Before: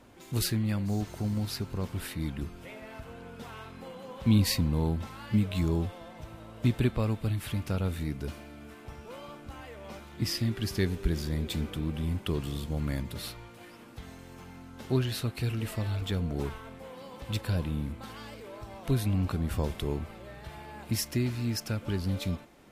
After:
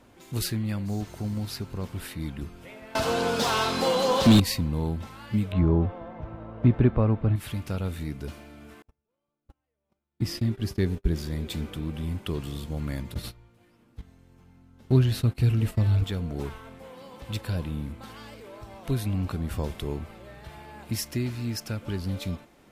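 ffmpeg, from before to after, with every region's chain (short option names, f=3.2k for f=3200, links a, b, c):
-filter_complex "[0:a]asettb=1/sr,asplit=3[a][b][c];[a]atrim=end=2.954[d];[b]atrim=start=2.95:end=4.4,asetpts=PTS-STARTPTS,afade=t=in:d=0.004:c=qsin,afade=t=out:st=1.446:d=0.004:c=qsin,highshelf=f=3.2k:t=q:w=1.5:g=13,acontrast=25,asplit=2[e][f];[f]highpass=f=720:p=1,volume=29dB,asoftclip=type=tanh:threshold=-7dB[g];[e][g]amix=inputs=2:normalize=0,lowpass=f=1.2k:p=1,volume=-6dB[h];[c]atrim=start=4.396[i];[d][h]acrossfade=d=0.004:c1=hsin:c2=qsin[j];[j][i]acrossfade=d=0.004:c1=qsin:c2=hsin,asettb=1/sr,asplit=3[k][l][m];[k]atrim=end=5.524[n];[l]atrim=start=5.52:end=7.36,asetpts=PTS-STARTPTS,afade=t=in:d=0.004:c=qsin,afade=t=out:st=1.836:d=0.004:c=qsin,lowpass=1.4k,acontrast=64[o];[m]atrim=start=7.356[p];[n][o]acrossfade=d=0.004:c1=hsin:c2=qsin[q];[q][p]acrossfade=d=0.004:c1=qsin:c2=hsin,asettb=1/sr,asplit=3[r][s][t];[r]atrim=end=8.824[u];[s]atrim=start=8.82:end=11.16,asetpts=PTS-STARTPTS,afade=t=in:d=0.004:c=qsin,afade=t=out:st=2.336:d=0.004:c=qsin,agate=range=-40dB:threshold=-38dB:ratio=16:release=100:detection=peak,tiltshelf=f=780:g=3.5[v];[t]atrim=start=11.156[w];[u][v]acrossfade=d=0.004:c1=hsin:c2=qsin[x];[x][w]acrossfade=d=0.004:c1=qsin:c2=hsin,asettb=1/sr,asplit=3[y][z][aa];[y]atrim=end=13.144[ab];[z]atrim=start=13.14:end=16.04,asetpts=PTS-STARTPTS,afade=t=in:d=0.004:c=qsin,afade=t=out:st=2.896:d=0.004:c=qsin,agate=range=-15dB:threshold=-40dB:ratio=16:release=100:detection=peak,lowshelf=f=250:g=11.5[ac];[aa]atrim=start=16.036[ad];[ab][ac]acrossfade=d=0.004:c1=hsin:c2=qsin[ae];[ae][ad]acrossfade=d=0.004:c1=qsin:c2=hsin"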